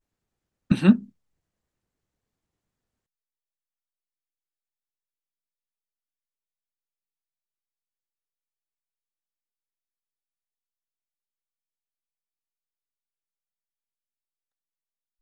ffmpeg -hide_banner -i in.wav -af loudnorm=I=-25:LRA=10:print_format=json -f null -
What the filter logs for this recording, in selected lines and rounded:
"input_i" : "-21.3",
"input_tp" : "-4.4",
"input_lra" : "0.0",
"input_thresh" : "-32.0",